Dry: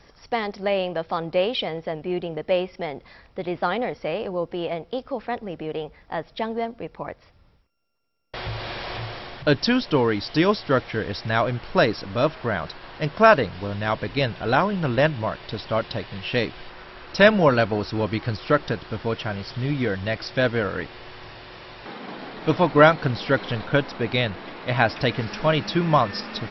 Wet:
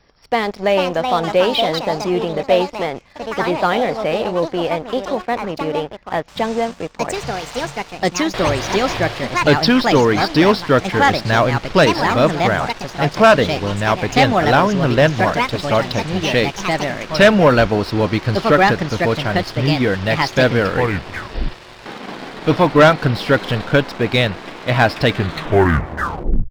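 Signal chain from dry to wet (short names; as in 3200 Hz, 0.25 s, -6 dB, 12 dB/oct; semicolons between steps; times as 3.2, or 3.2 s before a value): tape stop at the end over 1.47 s; echoes that change speed 0.514 s, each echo +4 st, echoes 2, each echo -6 dB; sample leveller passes 2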